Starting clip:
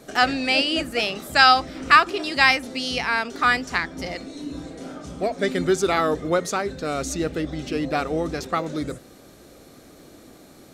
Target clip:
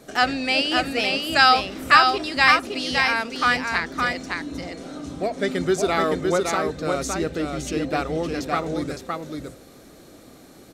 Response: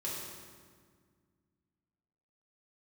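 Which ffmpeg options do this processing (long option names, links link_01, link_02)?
-af "aecho=1:1:563:0.631,volume=-1dB"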